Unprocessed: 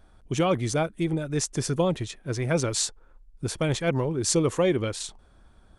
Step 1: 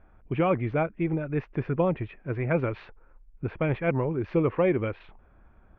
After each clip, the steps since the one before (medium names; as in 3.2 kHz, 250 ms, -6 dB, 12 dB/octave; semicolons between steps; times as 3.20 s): elliptic low-pass 2.5 kHz, stop band 70 dB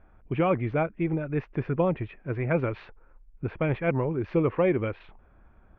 no audible change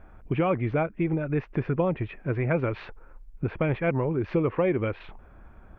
compression 2:1, threshold -34 dBFS, peak gain reduction 8.5 dB; trim +7 dB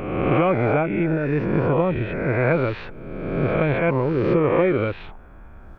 reverse spectral sustain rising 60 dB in 1.44 s; trim +3 dB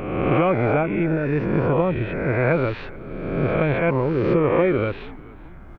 frequency-shifting echo 433 ms, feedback 45%, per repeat -100 Hz, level -22 dB